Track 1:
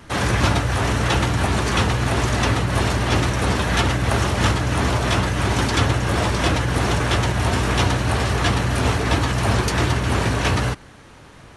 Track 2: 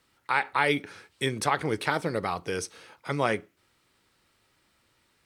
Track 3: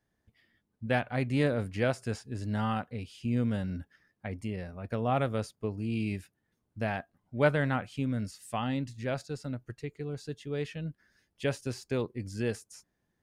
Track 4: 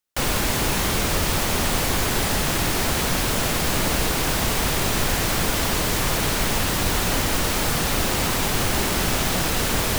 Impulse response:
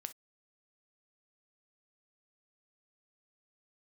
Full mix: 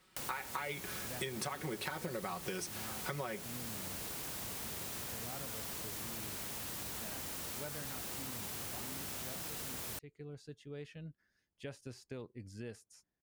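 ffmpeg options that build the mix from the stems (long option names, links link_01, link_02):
-filter_complex "[1:a]aecho=1:1:5.4:0.76,volume=-1dB[link_01];[2:a]adelay=200,volume=-10.5dB[link_02];[3:a]highpass=73,highshelf=frequency=6300:gain=10,volume=-15dB[link_03];[link_02][link_03]amix=inputs=2:normalize=0,acompressor=threshold=-42dB:ratio=3,volume=0dB[link_04];[link_01]acompressor=threshold=-27dB:ratio=6,volume=0dB[link_05];[link_04][link_05]amix=inputs=2:normalize=0,acompressor=threshold=-37dB:ratio=5"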